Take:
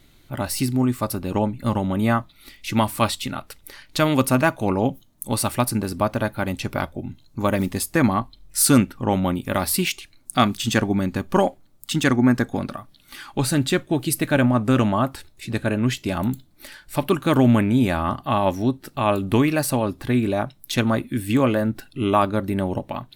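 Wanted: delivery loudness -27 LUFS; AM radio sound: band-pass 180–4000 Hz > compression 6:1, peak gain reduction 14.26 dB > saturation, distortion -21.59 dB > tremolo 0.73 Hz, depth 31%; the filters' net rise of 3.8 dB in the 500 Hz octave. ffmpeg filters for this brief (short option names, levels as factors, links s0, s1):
-af "highpass=180,lowpass=4000,equalizer=f=500:t=o:g=5,acompressor=threshold=0.0562:ratio=6,asoftclip=threshold=0.168,tremolo=f=0.73:d=0.31,volume=2"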